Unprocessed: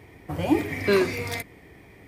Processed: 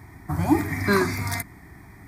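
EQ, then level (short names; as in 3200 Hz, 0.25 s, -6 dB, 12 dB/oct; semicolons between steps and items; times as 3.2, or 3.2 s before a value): fixed phaser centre 1200 Hz, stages 4; +7.0 dB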